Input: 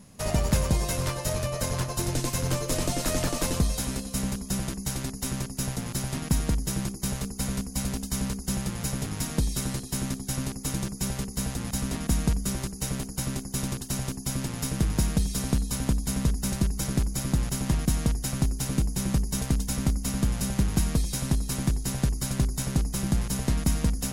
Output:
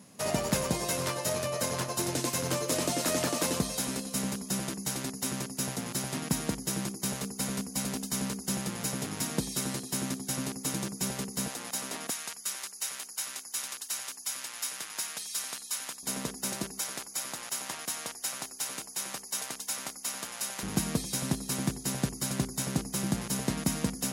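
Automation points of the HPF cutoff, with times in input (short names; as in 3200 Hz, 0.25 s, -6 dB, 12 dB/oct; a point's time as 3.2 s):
200 Hz
from 11.48 s 480 Hz
from 12.1 s 1200 Hz
from 16.03 s 350 Hz
from 16.79 s 770 Hz
from 20.63 s 180 Hz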